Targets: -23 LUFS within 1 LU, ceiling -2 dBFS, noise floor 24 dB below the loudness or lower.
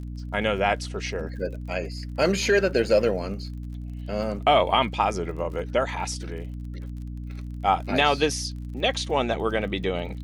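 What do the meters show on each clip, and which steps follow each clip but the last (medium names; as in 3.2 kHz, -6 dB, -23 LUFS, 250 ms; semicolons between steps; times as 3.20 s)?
tick rate 38 per s; hum 60 Hz; highest harmonic 300 Hz; hum level -32 dBFS; loudness -25.0 LUFS; peak level -8.0 dBFS; loudness target -23.0 LUFS
-> de-click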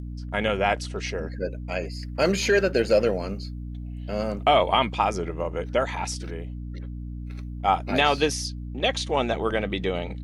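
tick rate 0.098 per s; hum 60 Hz; highest harmonic 300 Hz; hum level -32 dBFS
-> hum notches 60/120/180/240/300 Hz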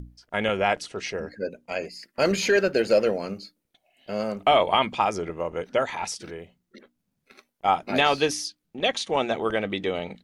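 hum not found; loudness -25.5 LUFS; peak level -8.0 dBFS; loudness target -23.0 LUFS
-> trim +2.5 dB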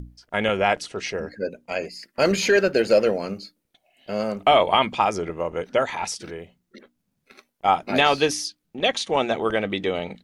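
loudness -23.0 LUFS; peak level -5.5 dBFS; noise floor -75 dBFS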